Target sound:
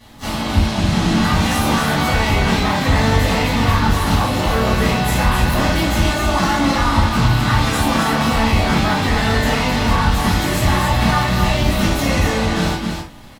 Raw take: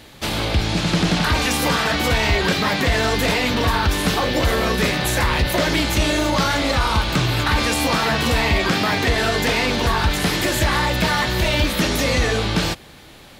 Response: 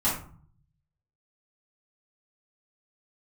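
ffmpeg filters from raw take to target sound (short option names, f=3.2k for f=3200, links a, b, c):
-filter_complex "[0:a]aecho=1:1:92|261:0.133|0.562,asplit=3[a][b][c];[b]asetrate=55563,aresample=44100,atempo=0.793701,volume=-9dB[d];[c]asetrate=88200,aresample=44100,atempo=0.5,volume=-16dB[e];[a][d][e]amix=inputs=3:normalize=0[f];[1:a]atrim=start_sample=2205,afade=t=out:st=0.15:d=0.01,atrim=end_sample=7056[g];[f][g]afir=irnorm=-1:irlink=0,volume=-11.5dB"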